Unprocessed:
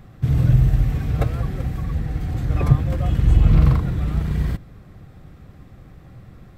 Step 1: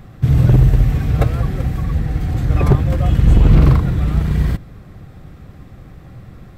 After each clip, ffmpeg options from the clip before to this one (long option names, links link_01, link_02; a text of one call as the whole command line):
ffmpeg -i in.wav -af "aeval=exprs='0.376*(abs(mod(val(0)/0.376+3,4)-2)-1)':channel_layout=same,volume=5.5dB" out.wav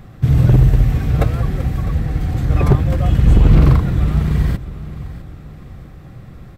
ffmpeg -i in.wav -af "aecho=1:1:654|1308|1962|2616:0.158|0.0634|0.0254|0.0101" out.wav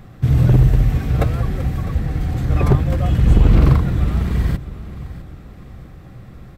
ffmpeg -i in.wav -af "bandreject=frequency=50:width_type=h:width=6,bandreject=frequency=100:width_type=h:width=6,bandreject=frequency=150:width_type=h:width=6,volume=-1dB" out.wav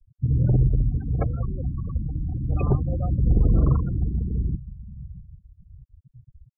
ffmpeg -i in.wav -af "afftfilt=real='re*gte(hypot(re,im),0.126)':imag='im*gte(hypot(re,im),0.126)':win_size=1024:overlap=0.75,volume=-7dB" out.wav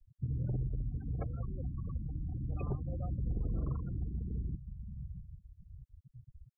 ffmpeg -i in.wav -af "acompressor=threshold=-32dB:ratio=2.5,volume=-5dB" out.wav